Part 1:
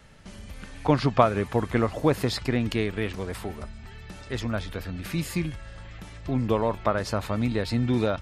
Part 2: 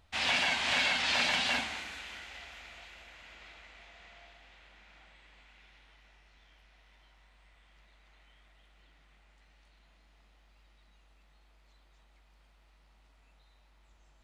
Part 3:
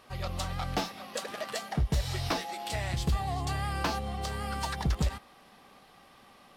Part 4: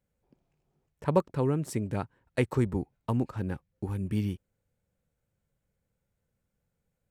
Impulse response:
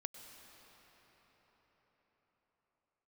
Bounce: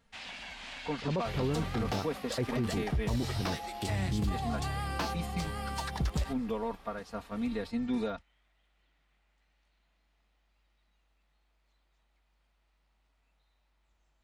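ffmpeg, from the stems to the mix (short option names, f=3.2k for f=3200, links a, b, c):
-filter_complex "[0:a]alimiter=limit=-14dB:level=0:latency=1:release=359,agate=range=-9dB:threshold=-29dB:ratio=16:detection=peak,aecho=1:1:4.3:0.92,volume=-10.5dB[a];[1:a]acompressor=threshold=-33dB:ratio=4,volume=-9.5dB[b];[2:a]adelay=1150,volume=-2.5dB[c];[3:a]lowpass=1.5k,volume=-1.5dB[d];[a][b][c][d]amix=inputs=4:normalize=0,alimiter=limit=-23.5dB:level=0:latency=1:release=13"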